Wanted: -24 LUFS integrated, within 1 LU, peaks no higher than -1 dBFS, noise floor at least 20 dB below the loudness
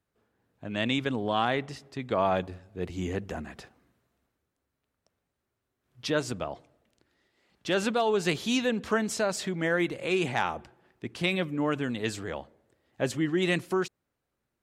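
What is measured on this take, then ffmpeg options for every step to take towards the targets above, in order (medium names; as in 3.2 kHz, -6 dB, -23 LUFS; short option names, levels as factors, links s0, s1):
loudness -29.5 LUFS; peak level -12.0 dBFS; loudness target -24.0 LUFS
-> -af "volume=1.88"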